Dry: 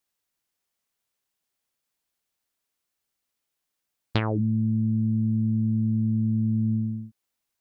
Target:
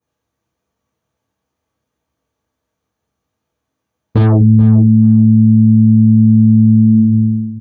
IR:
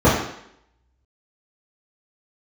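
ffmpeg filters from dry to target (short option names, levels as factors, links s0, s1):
-filter_complex "[0:a]asettb=1/sr,asplit=3[s0][s1][s2];[s0]atrim=end=6.174[s3];[s1]atrim=start=6.17:end=7.02,asetpts=PTS-STARTPTS,afade=t=in:d=0.004:c=qsin,afade=t=out:st=0.846:d=0.004:c=qsin,highshelf=f=2200:g=11[s4];[s2]atrim=start=7.016[s5];[s3][s4]acrossfade=d=0.004:c1=hsin:c2=qsin[s6];[s6][s5]acrossfade=d=0.004:c1=qsin:c2=hsin,asplit=2[s7][s8];[s8]adelay=431,lowpass=f=2400:p=1,volume=0.335,asplit=2[s9][s10];[s10]adelay=431,lowpass=f=2400:p=1,volume=0.17[s11];[s7][s9][s11]amix=inputs=3:normalize=0[s12];[1:a]atrim=start_sample=2205,atrim=end_sample=3969[s13];[s12][s13]afir=irnorm=-1:irlink=0,alimiter=level_in=0.282:limit=0.891:release=50:level=0:latency=1,volume=0.891"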